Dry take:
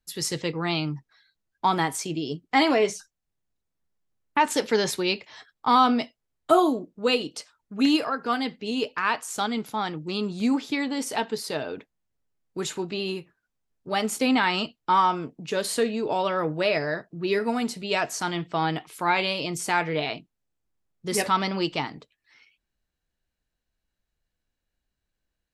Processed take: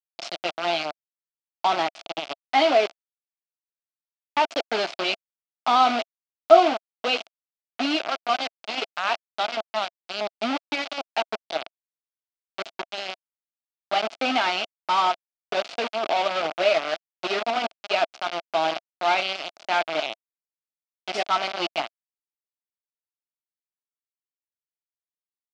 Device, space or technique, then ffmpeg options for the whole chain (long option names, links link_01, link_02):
hand-held game console: -filter_complex "[0:a]asettb=1/sr,asplit=3[link_01][link_02][link_03];[link_01]atrim=end=19.354[link_04];[link_02]atrim=start=19.35:end=20.07,asetpts=PTS-STARTPTS,afade=type=in:duration=0.004:curve=qsin,afade=type=out:start_time=0.716:duration=0.004:curve=qsin,highpass=frequency=170:width=0.5412,highpass=frequency=170:width=1.3066[link_05];[link_03]atrim=start=20.066[link_06];[link_04][link_05]acrossfade=duration=0.004:curve1=hsin:curve2=qsin[link_07];[link_07][link_06]acrossfade=duration=0.004:curve1=qsin:curve2=hsin,acrusher=bits=3:mix=0:aa=0.000001,highpass=450,equalizer=frequency=460:width_type=q:width=4:gain=-9,equalizer=frequency=670:width_type=q:width=4:gain=9,equalizer=frequency=1000:width_type=q:width=4:gain=-7,equalizer=frequency=1800:width_type=q:width=4:gain=-9,equalizer=frequency=3900:width_type=q:width=4:gain=-3,lowpass=frequency=4300:width=0.5412,lowpass=frequency=4300:width=1.3066,volume=2.5dB"